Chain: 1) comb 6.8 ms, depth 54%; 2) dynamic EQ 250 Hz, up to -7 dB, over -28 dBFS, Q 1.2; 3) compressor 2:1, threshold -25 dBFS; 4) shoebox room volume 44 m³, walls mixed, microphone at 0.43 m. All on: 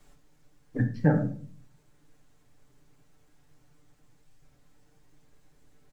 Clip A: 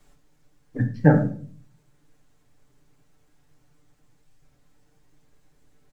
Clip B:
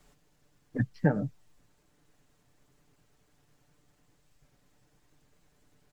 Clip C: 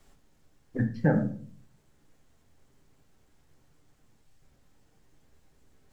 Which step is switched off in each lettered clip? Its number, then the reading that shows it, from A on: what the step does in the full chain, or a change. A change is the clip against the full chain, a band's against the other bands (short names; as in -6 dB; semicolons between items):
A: 3, mean gain reduction 3.0 dB; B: 4, echo-to-direct -3.5 dB to none; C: 1, 125 Hz band -2.5 dB